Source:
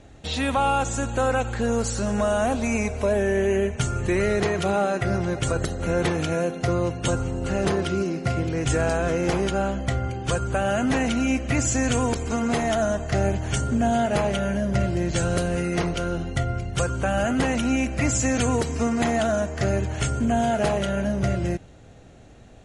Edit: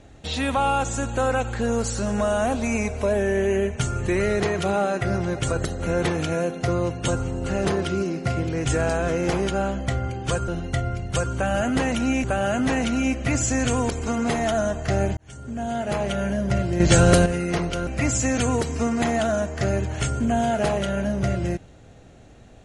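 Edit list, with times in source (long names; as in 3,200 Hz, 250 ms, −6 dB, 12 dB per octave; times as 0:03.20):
0:13.41–0:14.47: fade in
0:15.04–0:15.50: clip gain +8.5 dB
0:16.11–0:17.87: move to 0:10.48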